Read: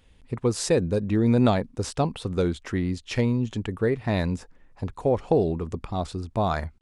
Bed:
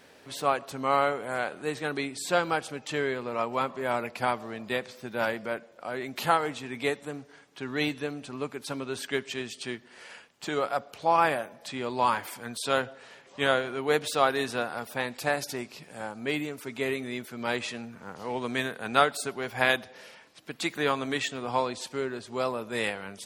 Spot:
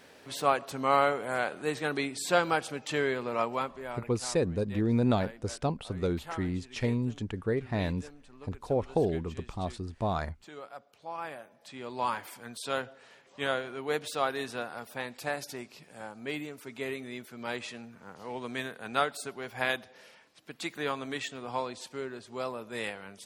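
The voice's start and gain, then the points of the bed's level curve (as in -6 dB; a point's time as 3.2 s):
3.65 s, -6.0 dB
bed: 3.44 s 0 dB
4.17 s -16.5 dB
11.15 s -16.5 dB
12.02 s -6 dB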